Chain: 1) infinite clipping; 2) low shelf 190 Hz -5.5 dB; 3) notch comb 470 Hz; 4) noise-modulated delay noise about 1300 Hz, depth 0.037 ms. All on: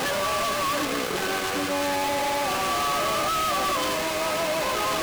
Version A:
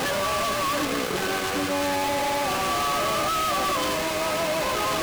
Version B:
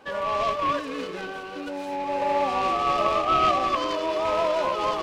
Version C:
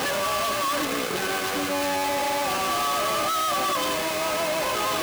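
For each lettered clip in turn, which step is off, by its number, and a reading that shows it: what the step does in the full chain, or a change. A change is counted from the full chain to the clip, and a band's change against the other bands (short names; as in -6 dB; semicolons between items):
2, 125 Hz band +2.5 dB; 1, distortion -2 dB; 4, 125 Hz band -2.0 dB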